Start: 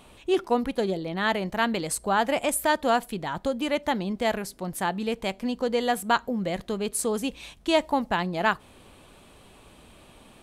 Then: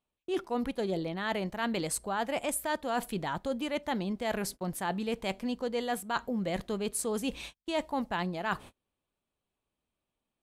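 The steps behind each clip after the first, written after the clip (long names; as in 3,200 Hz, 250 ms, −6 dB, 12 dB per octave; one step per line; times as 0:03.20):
noise gate −41 dBFS, range −37 dB
reversed playback
downward compressor 5 to 1, threshold −31 dBFS, peak gain reduction 13.5 dB
reversed playback
level +1.5 dB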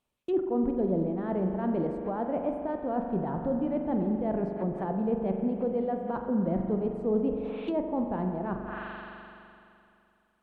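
spring reverb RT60 2.6 s, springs 42 ms, chirp 65 ms, DRR 3.5 dB
treble cut that deepens with the level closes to 580 Hz, closed at −30 dBFS
level +4.5 dB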